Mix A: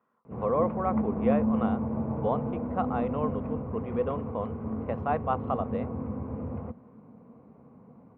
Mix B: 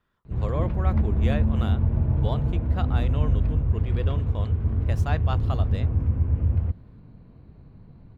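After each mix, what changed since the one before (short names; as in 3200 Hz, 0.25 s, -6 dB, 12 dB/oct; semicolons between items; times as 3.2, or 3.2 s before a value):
master: remove speaker cabinet 230–2100 Hz, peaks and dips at 230 Hz +9 dB, 340 Hz -4 dB, 490 Hz +8 dB, 770 Hz +5 dB, 1100 Hz +7 dB, 1700 Hz -8 dB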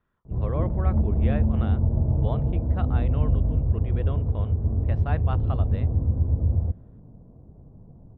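background: add synth low-pass 690 Hz, resonance Q 1.6; master: add air absorption 410 m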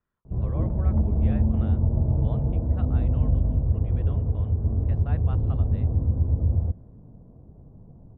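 speech -8.5 dB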